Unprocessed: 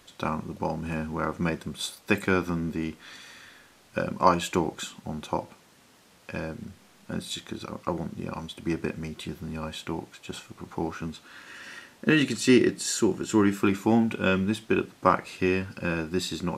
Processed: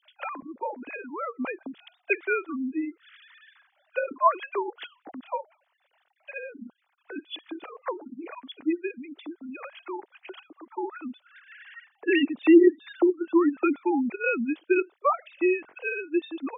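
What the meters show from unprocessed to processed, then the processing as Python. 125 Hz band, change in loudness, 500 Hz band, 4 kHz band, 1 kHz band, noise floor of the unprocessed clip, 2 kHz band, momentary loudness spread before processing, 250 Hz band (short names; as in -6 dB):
under -25 dB, +1.0 dB, +1.5 dB, -8.0 dB, -0.5 dB, -58 dBFS, 0.0 dB, 17 LU, +0.5 dB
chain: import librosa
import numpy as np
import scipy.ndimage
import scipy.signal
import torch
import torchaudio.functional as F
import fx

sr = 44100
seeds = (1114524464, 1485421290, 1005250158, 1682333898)

y = fx.sine_speech(x, sr)
y = fx.transient(y, sr, attack_db=1, sustain_db=-4)
y = fx.spec_gate(y, sr, threshold_db=-25, keep='strong')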